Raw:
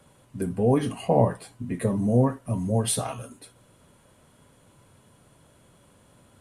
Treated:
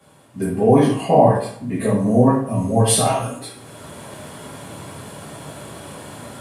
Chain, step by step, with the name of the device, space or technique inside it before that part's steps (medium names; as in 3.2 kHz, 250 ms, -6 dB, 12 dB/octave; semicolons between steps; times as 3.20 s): far laptop microphone (reverberation RT60 0.60 s, pre-delay 4 ms, DRR -8 dB; high-pass 110 Hz 12 dB/octave; level rider gain up to 15.5 dB); trim -1 dB